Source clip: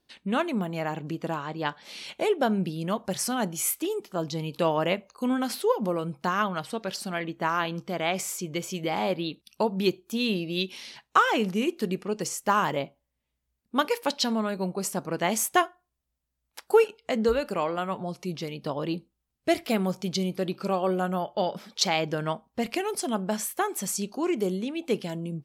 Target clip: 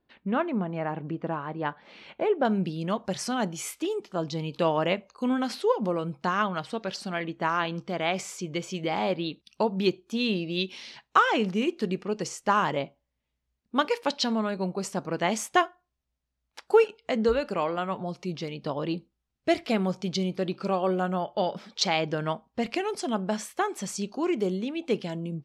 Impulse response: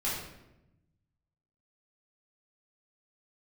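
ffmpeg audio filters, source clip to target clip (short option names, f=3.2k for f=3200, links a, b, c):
-af "asetnsamples=n=441:p=0,asendcmd='2.45 lowpass f 5900',lowpass=1.9k"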